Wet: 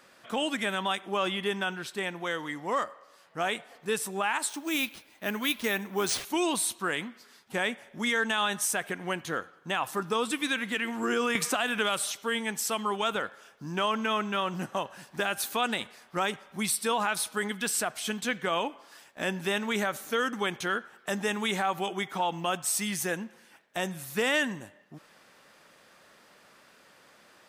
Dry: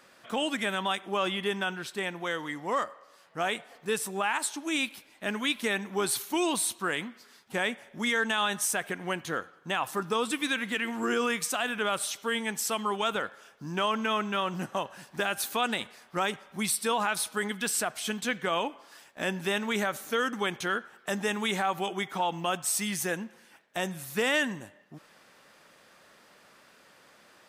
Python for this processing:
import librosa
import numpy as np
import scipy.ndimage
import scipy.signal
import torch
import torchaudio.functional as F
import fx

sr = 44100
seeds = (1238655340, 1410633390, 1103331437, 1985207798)

y = fx.resample_bad(x, sr, factor=3, down='none', up='hold', at=(4.49, 6.25))
y = fx.band_squash(y, sr, depth_pct=100, at=(11.35, 12.12))